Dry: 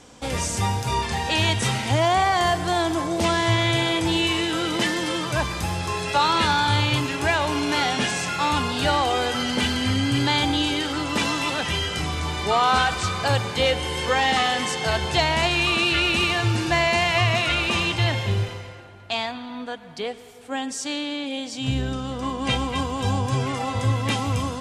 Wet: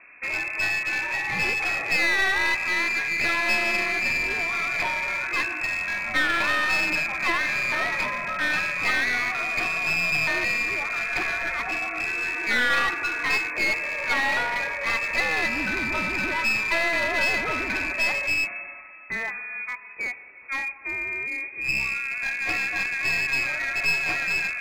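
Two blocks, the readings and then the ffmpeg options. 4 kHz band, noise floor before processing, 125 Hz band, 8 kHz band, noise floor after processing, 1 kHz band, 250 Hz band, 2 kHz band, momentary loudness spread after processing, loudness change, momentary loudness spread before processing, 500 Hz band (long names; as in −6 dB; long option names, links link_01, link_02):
−9.0 dB, −38 dBFS, −19.5 dB, −7.5 dB, −42 dBFS, −7.5 dB, −12.0 dB, +4.5 dB, 7 LU, −1.0 dB, 9 LU, −9.0 dB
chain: -af "bandreject=frequency=188.1:width_type=h:width=4,bandreject=frequency=376.2:width_type=h:width=4,bandreject=frequency=564.3:width_type=h:width=4,bandreject=frequency=752.4:width_type=h:width=4,bandreject=frequency=940.5:width_type=h:width=4,bandreject=frequency=1128.6:width_type=h:width=4,bandreject=frequency=1316.7:width_type=h:width=4,bandreject=frequency=1504.8:width_type=h:width=4,bandreject=frequency=1692.9:width_type=h:width=4,bandreject=frequency=1881:width_type=h:width=4,bandreject=frequency=2069.1:width_type=h:width=4,bandreject=frequency=2257.2:width_type=h:width=4,bandreject=frequency=2445.3:width_type=h:width=4,bandreject=frequency=2633.4:width_type=h:width=4,bandreject=frequency=2821.5:width_type=h:width=4,bandreject=frequency=3009.6:width_type=h:width=4,bandreject=frequency=3197.7:width_type=h:width=4,bandreject=frequency=3385.8:width_type=h:width=4,bandreject=frequency=3573.9:width_type=h:width=4,bandreject=frequency=3762:width_type=h:width=4,bandreject=frequency=3950.1:width_type=h:width=4,bandreject=frequency=4138.2:width_type=h:width=4,bandreject=frequency=4326.3:width_type=h:width=4,bandreject=frequency=4514.4:width_type=h:width=4,bandreject=frequency=4702.5:width_type=h:width=4,bandreject=frequency=4890.6:width_type=h:width=4,bandreject=frequency=5078.7:width_type=h:width=4,bandreject=frequency=5266.8:width_type=h:width=4,bandreject=frequency=5454.9:width_type=h:width=4,bandreject=frequency=5643:width_type=h:width=4,bandreject=frequency=5831.1:width_type=h:width=4,bandreject=frequency=6019.2:width_type=h:width=4,bandreject=frequency=6207.3:width_type=h:width=4,bandreject=frequency=6395.4:width_type=h:width=4,bandreject=frequency=6583.5:width_type=h:width=4,bandreject=frequency=6771.6:width_type=h:width=4,bandreject=frequency=6959.7:width_type=h:width=4,bandreject=frequency=7147.8:width_type=h:width=4,bandreject=frequency=7335.9:width_type=h:width=4,bandreject=frequency=7524:width_type=h:width=4,lowpass=frequency=2300:width_type=q:width=0.5098,lowpass=frequency=2300:width_type=q:width=0.6013,lowpass=frequency=2300:width_type=q:width=0.9,lowpass=frequency=2300:width_type=q:width=2.563,afreqshift=-2700,aeval=exprs='clip(val(0),-1,0.0531)':channel_layout=same"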